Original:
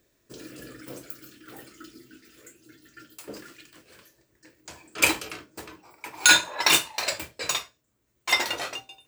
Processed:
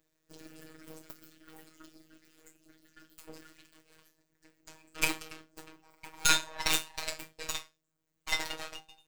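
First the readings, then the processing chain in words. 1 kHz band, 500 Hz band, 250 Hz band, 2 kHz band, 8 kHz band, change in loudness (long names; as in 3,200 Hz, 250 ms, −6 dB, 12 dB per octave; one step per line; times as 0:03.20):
−8.5 dB, −10.0 dB, −8.0 dB, −11.0 dB, −9.0 dB, −9.5 dB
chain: gain on one half-wave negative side −12 dB
phases set to zero 158 Hz
level −4 dB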